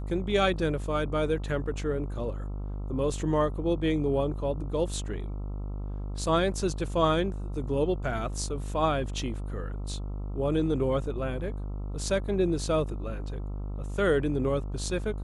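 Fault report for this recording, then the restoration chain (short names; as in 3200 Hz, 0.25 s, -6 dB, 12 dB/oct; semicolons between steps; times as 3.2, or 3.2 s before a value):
buzz 50 Hz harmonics 27 -34 dBFS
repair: de-hum 50 Hz, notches 27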